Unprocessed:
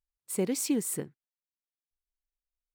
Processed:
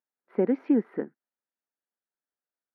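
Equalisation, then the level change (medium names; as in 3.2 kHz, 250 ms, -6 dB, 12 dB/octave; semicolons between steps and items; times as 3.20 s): elliptic band-pass 220–1700 Hz, stop band 60 dB; band-stop 1.1 kHz, Q 9.1; +6.5 dB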